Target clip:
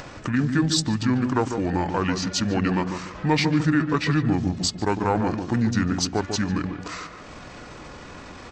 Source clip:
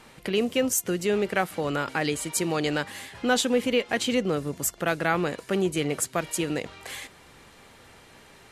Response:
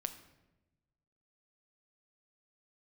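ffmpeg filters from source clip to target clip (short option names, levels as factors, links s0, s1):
-filter_complex "[0:a]asplit=2[s0][s1];[s1]asoftclip=type=tanh:threshold=0.0891,volume=0.473[s2];[s0][s2]amix=inputs=2:normalize=0,asetrate=26990,aresample=44100,atempo=1.63392,highshelf=f=11000:g=-4,asplit=2[s3][s4];[s4]adelay=147,lowpass=f=810:p=1,volume=0.562,asplit=2[s5][s6];[s6]adelay=147,lowpass=f=810:p=1,volume=0.33,asplit=2[s7][s8];[s8]adelay=147,lowpass=f=810:p=1,volume=0.33,asplit=2[s9][s10];[s10]adelay=147,lowpass=f=810:p=1,volume=0.33[s11];[s3][s5][s7][s9][s11]amix=inputs=5:normalize=0,acompressor=mode=upward:threshold=0.0282:ratio=2.5"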